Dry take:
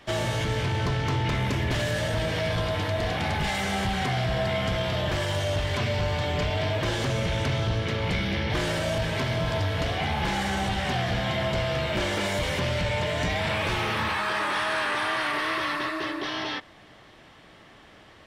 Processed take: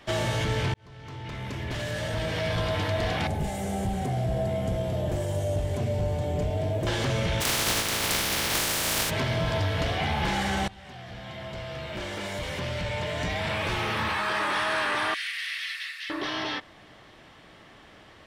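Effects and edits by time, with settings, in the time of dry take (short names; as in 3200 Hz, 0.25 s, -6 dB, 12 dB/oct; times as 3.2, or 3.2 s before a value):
0.74–2.73 fade in linear
3.27–6.87 band shelf 2300 Hz -14 dB 2.8 oct
7.4–9.09 spectral contrast lowered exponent 0.23
10.68–14.47 fade in, from -21.5 dB
15.14–16.1 steep high-pass 1900 Hz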